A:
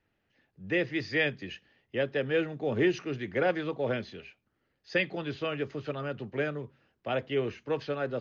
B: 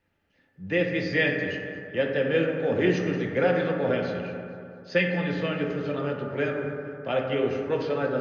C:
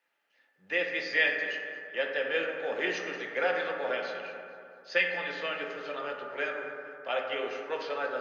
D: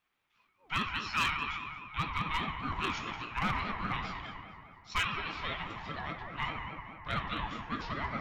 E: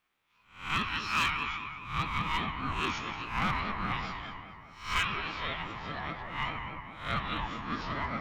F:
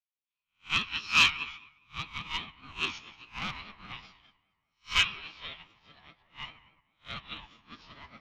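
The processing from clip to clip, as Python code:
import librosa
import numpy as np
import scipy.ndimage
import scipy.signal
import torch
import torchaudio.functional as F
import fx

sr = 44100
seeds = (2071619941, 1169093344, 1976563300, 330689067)

y1 = fx.echo_feedback(x, sr, ms=229, feedback_pct=39, wet_db=-17.5)
y1 = fx.rev_fdn(y1, sr, rt60_s=2.6, lf_ratio=1.0, hf_ratio=0.25, size_ms=34.0, drr_db=0.0)
y1 = y1 * librosa.db_to_amplitude(1.5)
y2 = scipy.signal.sosfilt(scipy.signal.butter(2, 730.0, 'highpass', fs=sr, output='sos'), y1)
y3 = np.clip(y2, -10.0 ** (-22.0 / 20.0), 10.0 ** (-22.0 / 20.0))
y3 = fx.ring_lfo(y3, sr, carrier_hz=600.0, swing_pct=25, hz=4.9)
y4 = fx.spec_swells(y3, sr, rise_s=0.45)
y5 = fx.band_shelf(y4, sr, hz=4000.0, db=10.5, octaves=1.7)
y5 = fx.upward_expand(y5, sr, threshold_db=-42.0, expansion=2.5)
y5 = y5 * librosa.db_to_amplitude(1.5)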